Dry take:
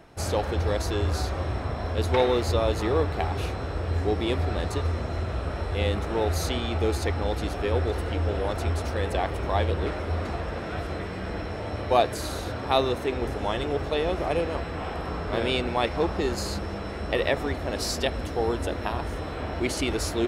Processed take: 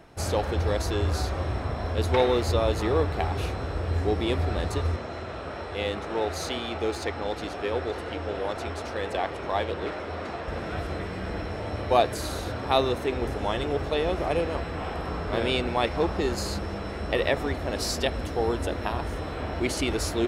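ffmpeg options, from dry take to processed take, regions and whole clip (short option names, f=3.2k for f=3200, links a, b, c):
-filter_complex "[0:a]asettb=1/sr,asplit=3[a][b][c];[a]atrim=end=4.964[d];[b]atrim=start=4.96:end=10.48,asetpts=PTS-STARTPTS,afade=t=in:d=0.004:c=qsin,afade=t=out:st=5.516:d=0.004:c=qsin,adynamicsmooth=sensitivity=7:basefreq=7.9k,highpass=f=300:p=1[e];[c]atrim=start=10.476[f];[d][e]acrossfade=d=0.004:c1=hsin:c2=qsin[g];[g][f]acrossfade=d=0.004:c1=qsin:c2=hsin"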